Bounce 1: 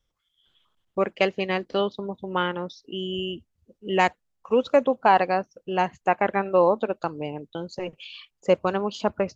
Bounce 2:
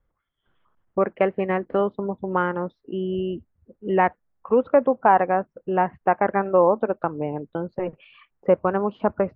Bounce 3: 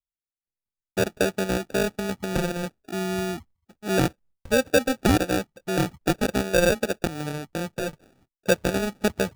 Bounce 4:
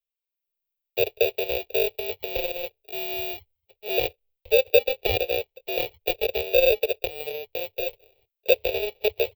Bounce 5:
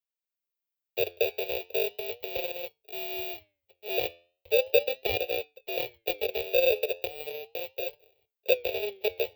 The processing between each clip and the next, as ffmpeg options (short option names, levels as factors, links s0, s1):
-filter_complex "[0:a]lowpass=f=1800:w=0.5412,lowpass=f=1800:w=1.3066,asplit=2[s0][s1];[s1]acompressor=threshold=0.0447:ratio=6,volume=0.841[s2];[s0][s2]amix=inputs=2:normalize=0"
-af "agate=range=0.0224:threshold=0.00501:ratio=3:detection=peak,lowshelf=f=190:g=8.5,acrusher=samples=42:mix=1:aa=0.000001,volume=0.631"
-filter_complex "[0:a]firequalizer=gain_entry='entry(100,0);entry(160,-25);entry(280,-21);entry(430,12);entry(1400,-20);entry(2400,12);entry(3900,8);entry(8700,-30);entry(15000,15)':delay=0.05:min_phase=1,acrossover=split=160|7100[s0][s1][s2];[s2]dynaudnorm=f=250:g=3:m=2.66[s3];[s0][s1][s3]amix=inputs=3:normalize=0,volume=0.473"
-af "highpass=f=110:p=1,flanger=delay=6.6:depth=5.2:regen=84:speed=0.37:shape=sinusoidal"